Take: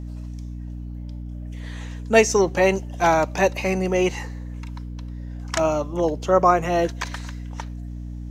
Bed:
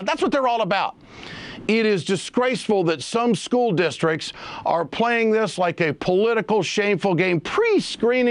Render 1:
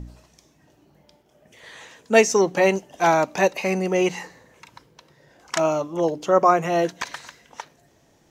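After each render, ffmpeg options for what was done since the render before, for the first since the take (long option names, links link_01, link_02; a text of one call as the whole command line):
ffmpeg -i in.wav -af "bandreject=frequency=60:width_type=h:width=4,bandreject=frequency=120:width_type=h:width=4,bandreject=frequency=180:width_type=h:width=4,bandreject=frequency=240:width_type=h:width=4,bandreject=frequency=300:width_type=h:width=4" out.wav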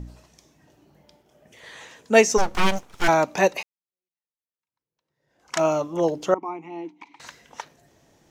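ffmpeg -i in.wav -filter_complex "[0:a]asplit=3[link_01][link_02][link_03];[link_01]afade=type=out:start_time=2.37:duration=0.02[link_04];[link_02]aeval=exprs='abs(val(0))':channel_layout=same,afade=type=in:start_time=2.37:duration=0.02,afade=type=out:start_time=3.07:duration=0.02[link_05];[link_03]afade=type=in:start_time=3.07:duration=0.02[link_06];[link_04][link_05][link_06]amix=inputs=3:normalize=0,asettb=1/sr,asplit=3[link_07][link_08][link_09];[link_07]atrim=end=6.344[link_10];[link_08]atrim=start=6.34:end=7.2,asetpts=PTS-STARTPTS,afade=type=in:duration=0.004:curve=qsin,afade=type=out:start_time=0.856:duration=0.004:curve=qsin,asplit=3[link_11][link_12][link_13];[link_11]bandpass=frequency=300:width_type=q:width=8,volume=0dB[link_14];[link_12]bandpass=frequency=870:width_type=q:width=8,volume=-6dB[link_15];[link_13]bandpass=frequency=2240:width_type=q:width=8,volume=-9dB[link_16];[link_14][link_15][link_16]amix=inputs=3:normalize=0[link_17];[link_09]atrim=start=7.196[link_18];[link_10][link_17]acrossfade=duration=0.004:curve1=hsin:curve2=qsin[link_19];[link_19][link_18]acrossfade=duration=0.004:curve1=qsin:curve2=hsin,asplit=2[link_20][link_21];[link_20]atrim=end=3.63,asetpts=PTS-STARTPTS,afade=type=out:start_time=3.626:duration=0.004:curve=hsin[link_22];[link_21]atrim=start=3.63,asetpts=PTS-STARTPTS,afade=type=in:duration=1.98:curve=exp[link_23];[link_22][link_23]concat=n=2:v=0:a=1" out.wav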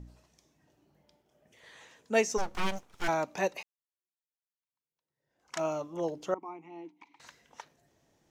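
ffmpeg -i in.wav -af "volume=-11dB" out.wav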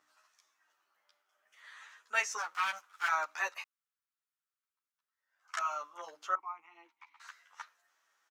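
ffmpeg -i in.wav -filter_complex "[0:a]highpass=frequency=1300:width_type=q:width=4,asplit=2[link_01][link_02];[link_02]adelay=11.2,afreqshift=0.68[link_03];[link_01][link_03]amix=inputs=2:normalize=1" out.wav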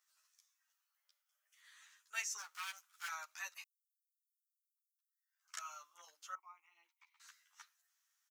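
ffmpeg -i in.wav -af "aderivative" out.wav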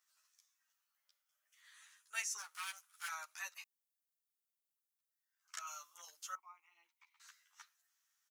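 ffmpeg -i in.wav -filter_complex "[0:a]asettb=1/sr,asplit=3[link_01][link_02][link_03];[link_01]atrim=end=1.744[link_04];[link_02]atrim=start=1.74:end=3.5,asetpts=PTS-STARTPTS,afade=type=in:duration=0.004:curve=qsin,afade=type=out:start_time=1.756:duration=0.004:curve=qsin,equalizer=frequency=9900:width=3.5:gain=10.5[link_05];[link_03]atrim=start=3.496[link_06];[link_04][link_05]acrossfade=duration=0.004:curve1=hsin:curve2=qsin[link_07];[link_07][link_06]acrossfade=duration=0.004:curve1=qsin:curve2=hsin,asettb=1/sr,asplit=3[link_08][link_09][link_10];[link_08]atrim=end=5.674[link_11];[link_09]atrim=start=5.67:end=6.37,asetpts=PTS-STARTPTS,afade=type=in:duration=0.004:curve=qsin,afade=type=out:start_time=0.696:duration=0.004:curve=qsin,equalizer=frequency=12000:width_type=o:width=2.1:gain=11[link_12];[link_10]atrim=start=6.366[link_13];[link_11][link_12]acrossfade=duration=0.004:curve1=hsin:curve2=qsin[link_14];[link_14][link_13]acrossfade=duration=0.004:curve1=qsin:curve2=hsin" out.wav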